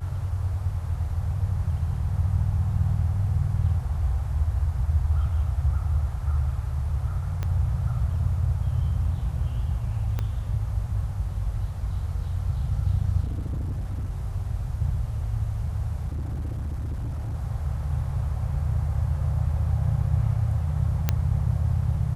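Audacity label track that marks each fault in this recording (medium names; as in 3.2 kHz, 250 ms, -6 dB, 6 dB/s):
7.430000	7.430000	pop -17 dBFS
10.190000	10.190000	pop -16 dBFS
13.240000	14.110000	clipped -25.5 dBFS
16.070000	17.350000	clipped -26.5 dBFS
21.090000	21.090000	pop -8 dBFS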